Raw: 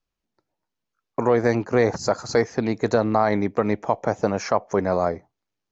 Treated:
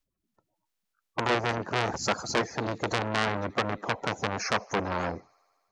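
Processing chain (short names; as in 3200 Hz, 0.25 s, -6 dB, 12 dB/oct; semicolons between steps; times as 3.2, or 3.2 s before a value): bin magnitudes rounded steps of 30 dB; on a send: thin delay 76 ms, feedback 76%, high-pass 2100 Hz, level -23.5 dB; on the sum: core saturation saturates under 2900 Hz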